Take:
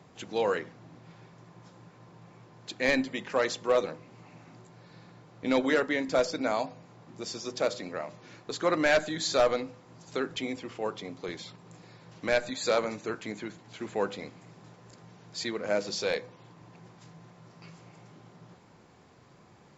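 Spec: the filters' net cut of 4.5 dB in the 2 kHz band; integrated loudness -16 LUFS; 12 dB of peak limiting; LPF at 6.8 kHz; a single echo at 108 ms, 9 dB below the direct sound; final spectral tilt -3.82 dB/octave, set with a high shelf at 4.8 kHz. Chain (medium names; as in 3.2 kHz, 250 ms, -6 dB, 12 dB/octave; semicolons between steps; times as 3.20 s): low-pass 6.8 kHz; peaking EQ 2 kHz -4.5 dB; treble shelf 4.8 kHz -7 dB; peak limiter -28 dBFS; delay 108 ms -9 dB; trim +22.5 dB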